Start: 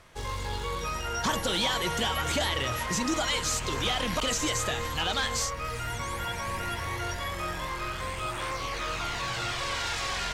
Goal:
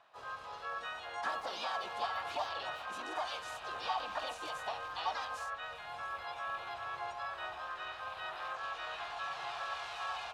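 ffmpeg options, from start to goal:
-filter_complex "[0:a]asplit=3[a][b][c];[a]bandpass=f=730:t=q:w=8,volume=0dB[d];[b]bandpass=f=1.09k:t=q:w=8,volume=-6dB[e];[c]bandpass=f=2.44k:t=q:w=8,volume=-9dB[f];[d][e][f]amix=inputs=3:normalize=0,asubboost=boost=4.5:cutoff=70,asplit=3[g][h][i];[h]asetrate=52444,aresample=44100,atempo=0.840896,volume=-1dB[j];[i]asetrate=66075,aresample=44100,atempo=0.66742,volume=-2dB[k];[g][j][k]amix=inputs=3:normalize=0,volume=-1.5dB"

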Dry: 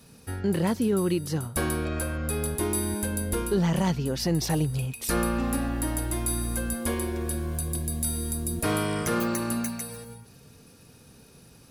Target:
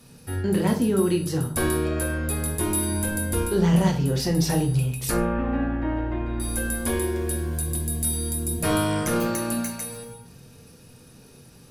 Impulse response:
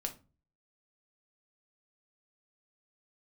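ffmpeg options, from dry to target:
-filter_complex "[0:a]asettb=1/sr,asplit=3[a][b][c];[a]atrim=end=5.114[d];[b]atrim=start=5.11:end=6.4,asetpts=PTS-STARTPTS,afade=t=in:d=0.004:c=qsin,afade=t=out:st=1.286:d=0.004:c=qsin,lowpass=f=2.4k:w=0.5412,lowpass=f=2.4k:w=1.3066[e];[c]atrim=start=6.396[f];[d][e]acrossfade=d=0.004:c1=hsin:c2=qsin[g];[g][f]acrossfade=d=0.004:c1=qsin:c2=hsin[h];[1:a]atrim=start_sample=2205,asetrate=29106,aresample=44100[i];[h][i]afir=irnorm=-1:irlink=0"

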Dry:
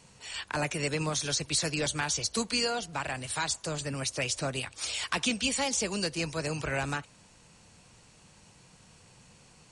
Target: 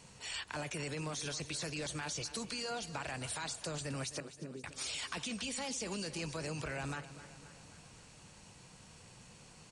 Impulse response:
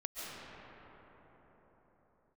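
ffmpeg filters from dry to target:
-filter_complex "[0:a]alimiter=level_in=3dB:limit=-24dB:level=0:latency=1:release=18,volume=-3dB,acompressor=threshold=-39dB:ratio=2.5,asettb=1/sr,asplit=3[a][b][c];[a]atrim=end=4.204[d];[b]atrim=start=4.2:end=4.64,asetpts=PTS-STARTPTS,afade=t=in:d=0.004:c=qsin,afade=t=out:st=0.436:d=0.004:c=qsin,asuperpass=centerf=260:order=8:qfactor=0.86[e];[c]atrim=start=4.636[f];[d][e]acrossfade=d=0.004:c1=hsin:c2=qsin[g];[g][f]acrossfade=d=0.004:c1=qsin:c2=hsin,aecho=1:1:263|526|789|1052|1315|1578:0.188|0.109|0.0634|0.0368|0.0213|0.0124"

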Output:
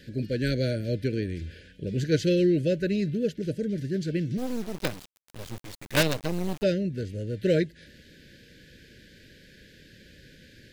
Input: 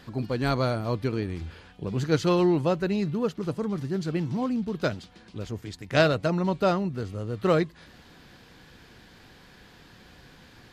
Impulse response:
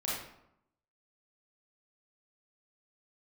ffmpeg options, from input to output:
-filter_complex "[0:a]asuperstop=centerf=960:order=20:qfactor=1.1,asplit=3[a][b][c];[a]afade=t=out:st=4.37:d=0.02[d];[b]acrusher=bits=4:dc=4:mix=0:aa=0.000001,afade=t=in:st=4.37:d=0.02,afade=t=out:st=6.62:d=0.02[e];[c]afade=t=in:st=6.62:d=0.02[f];[d][e][f]amix=inputs=3:normalize=0"

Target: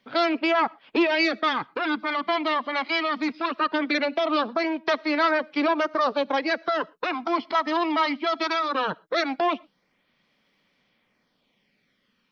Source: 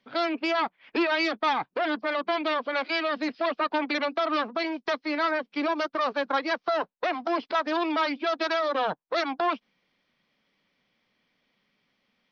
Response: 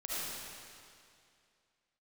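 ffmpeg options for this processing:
-filter_complex "[0:a]flanger=delay=0:depth=1:regen=-29:speed=0.19:shape=sinusoidal,asplit=2[a][b];[1:a]atrim=start_sample=2205,afade=t=out:st=0.18:d=0.01,atrim=end_sample=8379[c];[b][c]afir=irnorm=-1:irlink=0,volume=-25.5dB[d];[a][d]amix=inputs=2:normalize=0,volume=6dB"

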